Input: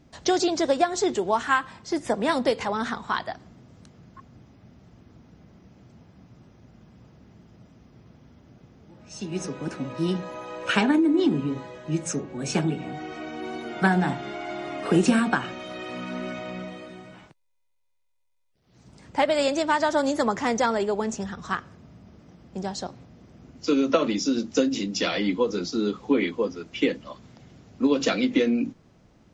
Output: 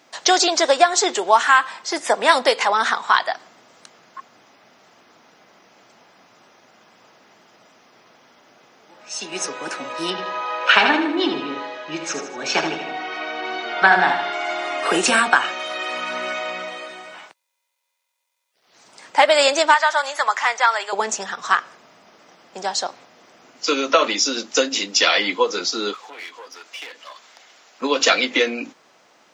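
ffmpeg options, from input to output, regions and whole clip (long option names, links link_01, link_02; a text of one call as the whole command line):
ffmpeg -i in.wav -filter_complex "[0:a]asettb=1/sr,asplit=3[link_01][link_02][link_03];[link_01]atrim=end=10.104[link_04];[link_02]atrim=start=10.1:end=14.33,asetpts=PTS-STARTPTS,afade=type=in:duration=0.004:curve=qsin,afade=type=out:start_time=4.226:duration=0.004:curve=qsin,lowpass=frequency=5100:width=0.5412,lowpass=frequency=5100:width=1.3066,aecho=1:1:78|156|234|312|390:0.398|0.187|0.0879|0.0413|0.0194,atrim=end_sample=186543[link_05];[link_03]atrim=start=14.326[link_06];[link_04][link_05]acrossfade=duration=0.004:curve1=hsin:curve2=qsin[link_07];[link_07][link_06]acrossfade=duration=0.004:curve1=qsin:curve2=hsin,asettb=1/sr,asplit=3[link_08][link_09][link_10];[link_08]atrim=end=19.744[link_11];[link_09]atrim=start=19.74:end=20.93,asetpts=PTS-STARTPTS,afade=type=in:duration=0.004:curve=qsin,afade=type=out:start_time=1.186:duration=0.004:curve=qsin,highpass=1000,acrossover=split=3200[link_12][link_13];[link_13]acompressor=threshold=-46dB:ratio=4:attack=1:release=60[link_14];[link_12][link_14]amix=inputs=2:normalize=0[link_15];[link_10]atrim=start=20.926[link_16];[link_11][link_15]acrossfade=duration=0.004:curve1=hsin:curve2=qsin[link_17];[link_17][link_16]acrossfade=duration=0.004:curve1=qsin:curve2=hsin,asettb=1/sr,asplit=3[link_18][link_19][link_20];[link_18]atrim=end=25.944[link_21];[link_19]atrim=start=25.94:end=27.82,asetpts=PTS-STARTPTS,afade=type=in:duration=0.004:curve=qsin,afade=type=out:start_time=1.876:duration=0.004:curve=qsin,highpass=frequency=850:poles=1,acompressor=threshold=-43dB:ratio=3:attack=3.2:release=140:knee=1:detection=peak,aeval=exprs='clip(val(0),-1,0.00376)':channel_layout=same[link_22];[link_20]atrim=start=27.816[link_23];[link_21][link_22]acrossfade=duration=0.004:curve1=hsin:curve2=qsin[link_24];[link_24][link_23]acrossfade=duration=0.004:curve1=qsin:curve2=hsin,highpass=760,alimiter=level_in=13.5dB:limit=-1dB:release=50:level=0:latency=1,volume=-1dB" out.wav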